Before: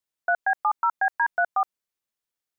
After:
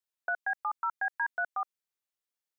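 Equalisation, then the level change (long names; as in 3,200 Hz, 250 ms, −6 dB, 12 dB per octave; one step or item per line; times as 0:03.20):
low-shelf EQ 280 Hz −8.5 dB
dynamic equaliser 720 Hz, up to −7 dB, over −38 dBFS, Q 0.97
−4.5 dB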